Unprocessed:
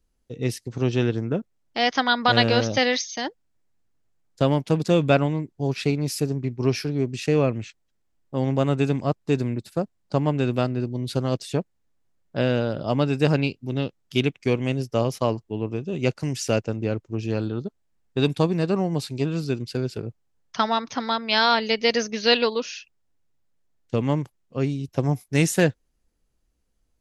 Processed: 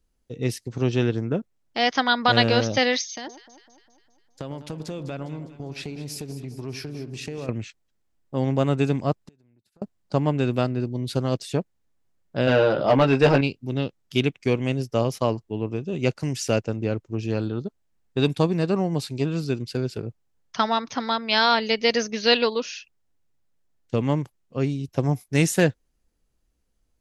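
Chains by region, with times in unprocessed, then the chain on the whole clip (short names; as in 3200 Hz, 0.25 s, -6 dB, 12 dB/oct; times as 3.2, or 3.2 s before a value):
3.09–7.49 compressor 5:1, threshold -31 dBFS + echo with dull and thin repeats by turns 0.101 s, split 1200 Hz, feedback 74%, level -10.5 dB
9.25–9.82 compressor 12:1, threshold -30 dBFS + flipped gate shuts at -34 dBFS, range -26 dB
12.47–13.41 LPF 5500 Hz + doubler 15 ms -4 dB + overdrive pedal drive 17 dB, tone 2300 Hz, clips at -6.5 dBFS
whole clip: dry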